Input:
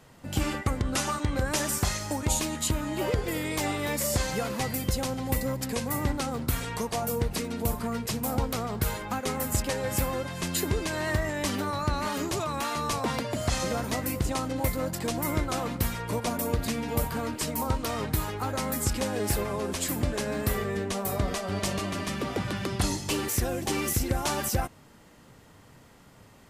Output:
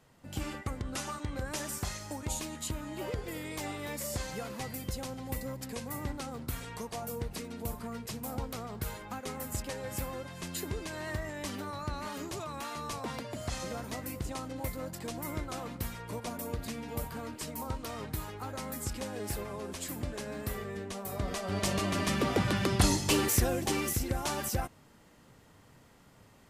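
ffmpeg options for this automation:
-af "volume=2dB,afade=t=in:st=21.09:d=1.05:silence=0.281838,afade=t=out:st=23.18:d=0.79:silence=0.446684"

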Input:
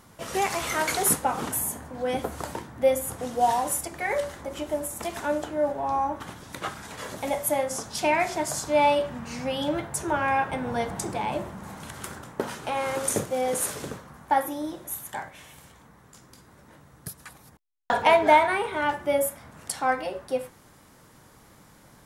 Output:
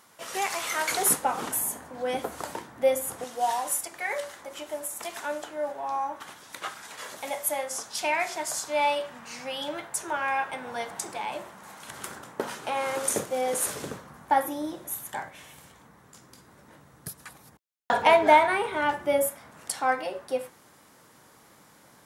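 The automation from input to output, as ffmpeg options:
-af "asetnsamples=n=441:p=0,asendcmd='0.91 highpass f 350;3.24 highpass f 1000;11.88 highpass f 320;13.67 highpass f 120;19.29 highpass f 290',highpass=f=860:p=1"

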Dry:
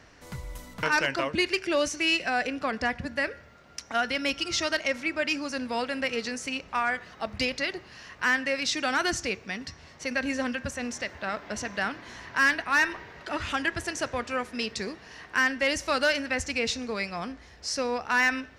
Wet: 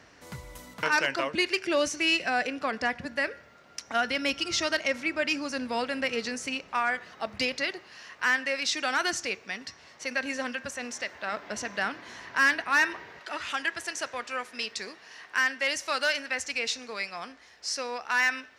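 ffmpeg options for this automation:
-af "asetnsamples=n=441:p=0,asendcmd='0.74 highpass f 280;1.65 highpass f 110;2.43 highpass f 240;3.87 highpass f 93;6.55 highpass f 230;7.71 highpass f 490;11.32 highpass f 240;13.19 highpass f 930',highpass=f=130:p=1"

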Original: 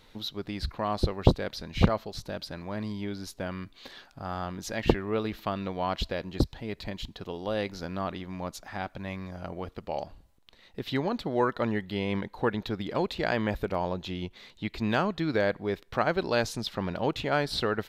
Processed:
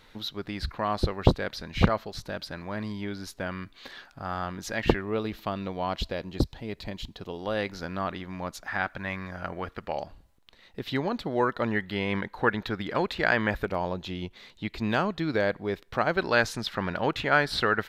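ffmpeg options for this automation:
-af "asetnsamples=n=441:p=0,asendcmd='5.01 equalizer g -1;7.39 equalizer g 5.5;8.67 equalizer g 12;9.92 equalizer g 2.5;11.71 equalizer g 9;13.65 equalizer g 1.5;16.17 equalizer g 9.5',equalizer=f=1.6k:t=o:w=1.2:g=5.5"

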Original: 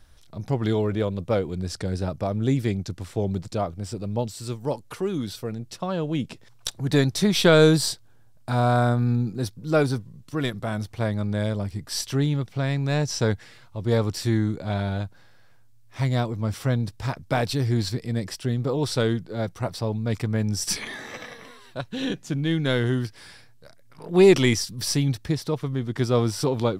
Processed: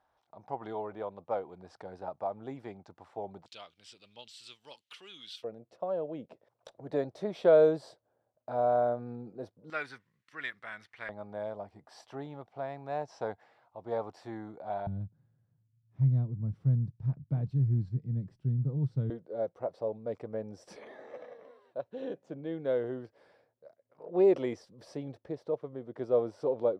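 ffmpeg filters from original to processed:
-af "asetnsamples=n=441:p=0,asendcmd='3.46 bandpass f 3100;5.44 bandpass f 590;9.7 bandpass f 1900;11.09 bandpass f 750;14.87 bandpass f 140;19.1 bandpass f 550',bandpass=f=820:t=q:w=3.4:csg=0"

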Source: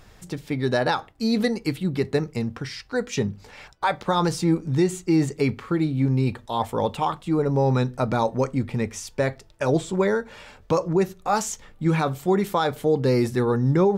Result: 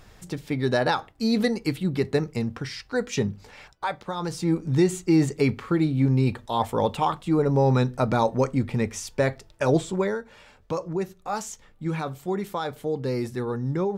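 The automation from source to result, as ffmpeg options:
-af "volume=10dB,afade=t=out:st=3.31:d=0.86:silence=0.334965,afade=t=in:st=4.17:d=0.59:silence=0.298538,afade=t=out:st=9.75:d=0.44:silence=0.421697"

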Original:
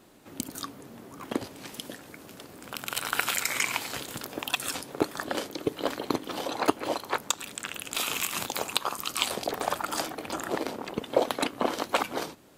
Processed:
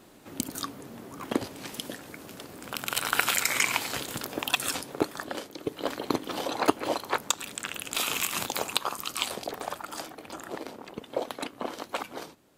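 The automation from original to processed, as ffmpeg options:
-af "volume=10dB,afade=t=out:st=4.66:d=0.81:silence=0.354813,afade=t=in:st=5.47:d=0.71:silence=0.421697,afade=t=out:st=8.53:d=1.27:silence=0.398107"

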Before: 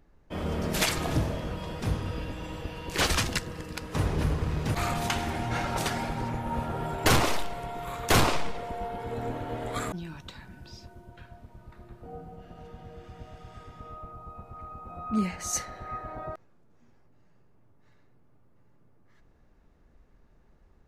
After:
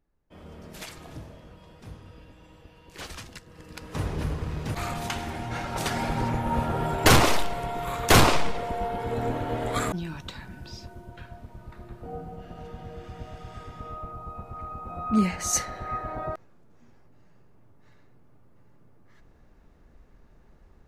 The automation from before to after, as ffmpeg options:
-af "volume=5dB,afade=t=in:st=3.46:d=0.44:silence=0.251189,afade=t=in:st=5.7:d=0.47:silence=0.421697"

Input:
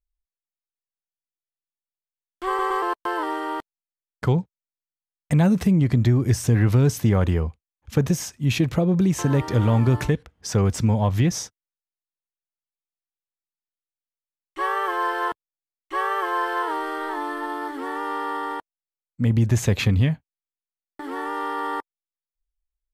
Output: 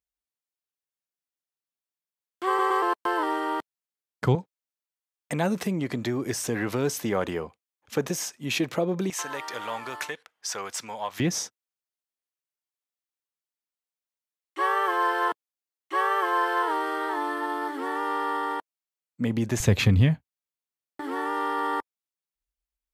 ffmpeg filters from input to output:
-af "asetnsamples=n=441:p=0,asendcmd='4.35 highpass f 340;9.1 highpass f 930;11.2 highpass f 230;19.6 highpass f 54',highpass=120"

